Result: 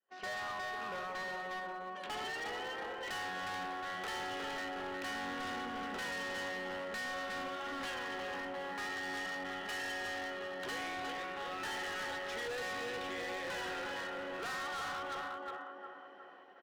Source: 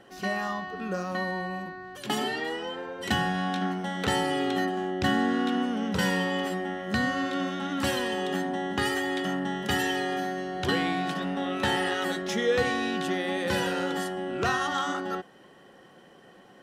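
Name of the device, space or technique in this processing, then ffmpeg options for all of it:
walkie-talkie: -filter_complex "[0:a]asettb=1/sr,asplit=3[link_01][link_02][link_03];[link_01]atrim=end=7.944[link_04];[link_02]atrim=start=7.94:end=9.03,asetpts=PTS-STARTPTS,afade=type=in:duration=0.004:curve=qsin,afade=type=out:start_time=1.086:duration=0.004:curve=qsin,lowpass=2700[link_05];[link_03]atrim=start=9.026[link_06];[link_04][link_05]acrossfade=duration=0.004:curve1=hsin:curve2=qsin[link_07];[link_07][link_06]acrossfade=duration=0.004:curve1=qsin:curve2=hsin,adynamicequalizer=threshold=0.00794:dfrequency=740:dqfactor=0.99:tfrequency=740:tqfactor=0.99:attack=5:release=100:ratio=0.375:range=2:mode=cutabove:tftype=bell,highpass=590,lowpass=2700,asplit=2[link_08][link_09];[link_09]adelay=360,lowpass=frequency=1900:poles=1,volume=-4dB,asplit=2[link_10][link_11];[link_11]adelay=360,lowpass=frequency=1900:poles=1,volume=0.54,asplit=2[link_12][link_13];[link_13]adelay=360,lowpass=frequency=1900:poles=1,volume=0.54,asplit=2[link_14][link_15];[link_15]adelay=360,lowpass=frequency=1900:poles=1,volume=0.54,asplit=2[link_16][link_17];[link_17]adelay=360,lowpass=frequency=1900:poles=1,volume=0.54,asplit=2[link_18][link_19];[link_19]adelay=360,lowpass=frequency=1900:poles=1,volume=0.54,asplit=2[link_20][link_21];[link_21]adelay=360,lowpass=frequency=1900:poles=1,volume=0.54[link_22];[link_08][link_10][link_12][link_14][link_16][link_18][link_20][link_22]amix=inputs=8:normalize=0,asoftclip=type=hard:threshold=-36dB,agate=range=-30dB:threshold=-54dB:ratio=16:detection=peak,volume=-2dB"

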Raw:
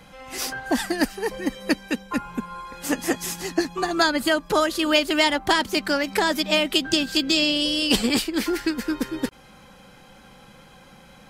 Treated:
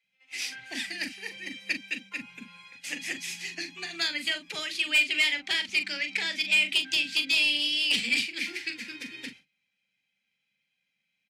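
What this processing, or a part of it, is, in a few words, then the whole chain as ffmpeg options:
intercom: -filter_complex "[0:a]asettb=1/sr,asplit=3[link_01][link_02][link_03];[link_01]atrim=end=4.904[link_04];[link_02]atrim=start=4.9:end=6.56,asetpts=PTS-STARTPTS,afade=type=in:duration=0.004:curve=qsin,afade=type=out:start_time=1.656:duration=0.004:curve=qsin,lowpass=8200[link_05];[link_03]atrim=start=6.556[link_06];[link_04][link_05]acrossfade=duration=0.004:curve1=hsin:curve2=qsin[link_07];[link_07][link_06]acrossfade=duration=0.004:curve1=qsin:curve2=hsin,agate=range=-25dB:threshold=-38dB:ratio=16:detection=peak,highpass=410,lowpass=3500,firequalizer=gain_entry='entry(100,0);entry(410,-23);entry(1100,-29);entry(2000,-6);entry(10000,5)':delay=0.05:min_phase=1,equalizer=frequency=2400:width_type=o:width=0.29:gain=8.5,acrossover=split=340[link_08][link_09];[link_08]adelay=30[link_10];[link_10][link_09]amix=inputs=2:normalize=0,asoftclip=type=tanh:threshold=-20dB,asplit=2[link_11][link_12];[link_12]adelay=41,volume=-9.5dB[link_13];[link_11][link_13]amix=inputs=2:normalize=0,volume=4.5dB"

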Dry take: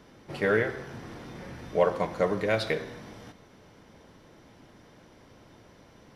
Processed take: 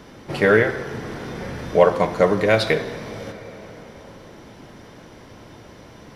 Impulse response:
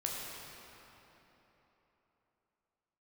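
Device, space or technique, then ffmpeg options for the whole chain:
ducked reverb: -filter_complex "[0:a]asplit=3[link_01][link_02][link_03];[1:a]atrim=start_sample=2205[link_04];[link_02][link_04]afir=irnorm=-1:irlink=0[link_05];[link_03]apad=whole_len=271530[link_06];[link_05][link_06]sidechaincompress=threshold=-28dB:ratio=8:attack=16:release=1370,volume=-10dB[link_07];[link_01][link_07]amix=inputs=2:normalize=0,volume=8.5dB"

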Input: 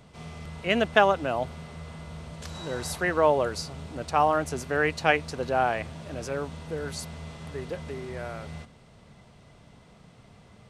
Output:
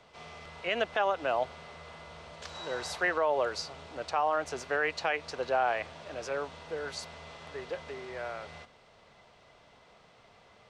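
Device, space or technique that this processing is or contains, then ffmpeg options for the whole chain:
DJ mixer with the lows and highs turned down: -filter_complex "[0:a]acrossover=split=420 6800:gain=0.0708 1 0.1[link_01][link_02][link_03];[link_01][link_02][link_03]amix=inputs=3:normalize=0,alimiter=limit=-19dB:level=0:latency=1:release=114,lowshelf=frequency=160:gain=11.5"

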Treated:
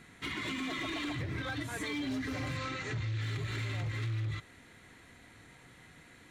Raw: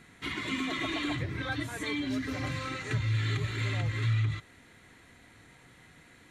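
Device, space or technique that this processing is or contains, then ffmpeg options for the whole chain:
limiter into clipper: -filter_complex "[0:a]alimiter=level_in=3dB:limit=-24dB:level=0:latency=1:release=87,volume=-3dB,asoftclip=type=hard:threshold=-31.5dB,asettb=1/sr,asplit=3[link_01][link_02][link_03];[link_01]atrim=end=2.574[link_04];[link_02]atrim=start=2.57:end=3.21,asetpts=PTS-STARTPTS,afade=type=in:duration=0.004:curve=qsin,afade=type=out:start_time=0.636:duration=0.004:curve=qsin,lowpass=frequency=7500:width=0.5412,lowpass=frequency=7500:width=1.3066[link_05];[link_03]atrim=start=3.206[link_06];[link_04][link_05]acrossfade=duration=0.004:curve1=hsin:curve2=qsin[link_07];[link_07][link_06]acrossfade=duration=0.004:curve1=qsin:curve2=hsin"

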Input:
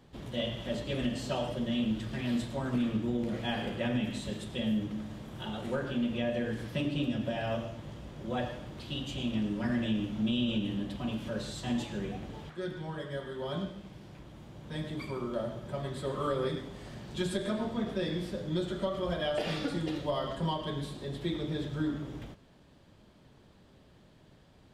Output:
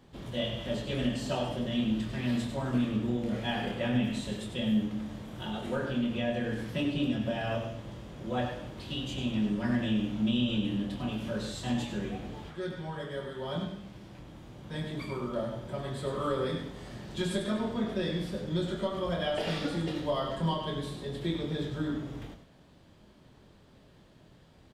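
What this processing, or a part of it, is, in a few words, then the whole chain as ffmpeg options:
slapback doubling: -filter_complex "[0:a]asplit=3[link_01][link_02][link_03];[link_02]adelay=24,volume=-6dB[link_04];[link_03]adelay=97,volume=-8.5dB[link_05];[link_01][link_04][link_05]amix=inputs=3:normalize=0"

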